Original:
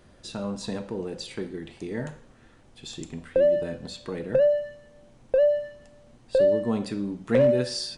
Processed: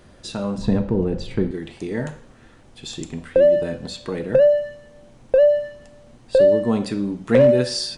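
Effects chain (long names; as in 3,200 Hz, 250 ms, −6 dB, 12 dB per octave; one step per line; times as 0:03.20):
0:00.58–0:01.51: RIAA equalisation playback
level +6 dB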